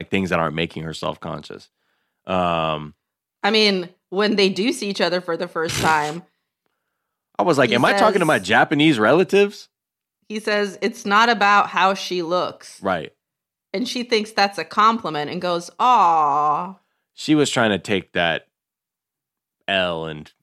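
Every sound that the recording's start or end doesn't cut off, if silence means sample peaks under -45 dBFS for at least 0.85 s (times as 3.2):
7.35–18.43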